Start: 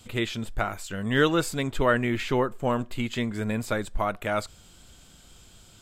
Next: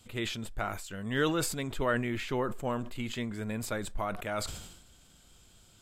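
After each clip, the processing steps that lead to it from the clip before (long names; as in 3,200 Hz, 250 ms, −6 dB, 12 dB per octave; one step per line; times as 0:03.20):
parametric band 11,000 Hz +2.5 dB 0.64 octaves
level that may fall only so fast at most 57 dB per second
level −7.5 dB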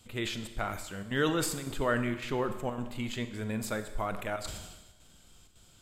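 square-wave tremolo 1.8 Hz, depth 65%, duty 85%
four-comb reverb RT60 1.2 s, combs from 29 ms, DRR 9.5 dB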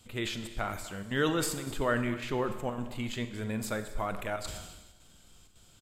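single-tap delay 247 ms −18 dB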